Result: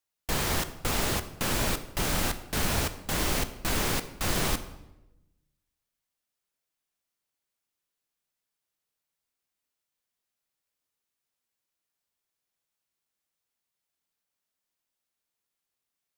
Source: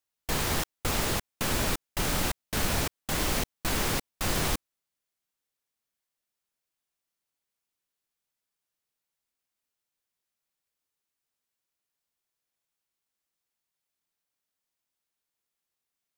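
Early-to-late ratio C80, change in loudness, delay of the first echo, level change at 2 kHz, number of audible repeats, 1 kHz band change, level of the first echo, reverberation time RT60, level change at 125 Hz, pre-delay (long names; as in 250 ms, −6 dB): 15.0 dB, +0.5 dB, no echo audible, +0.5 dB, no echo audible, +0.5 dB, no echo audible, 1.0 s, +0.5 dB, 13 ms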